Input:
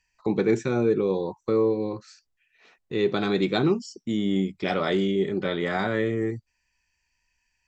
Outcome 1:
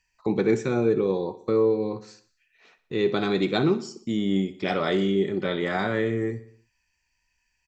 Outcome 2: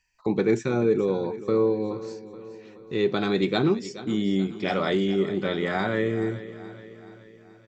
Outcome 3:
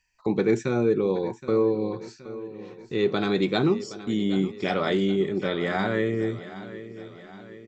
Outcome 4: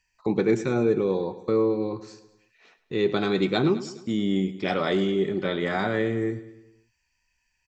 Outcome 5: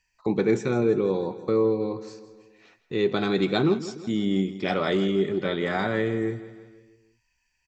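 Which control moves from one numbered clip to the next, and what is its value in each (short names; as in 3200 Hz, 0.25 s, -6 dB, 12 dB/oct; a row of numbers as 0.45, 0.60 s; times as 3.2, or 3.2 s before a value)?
feedback echo, time: 61, 426, 771, 105, 163 ms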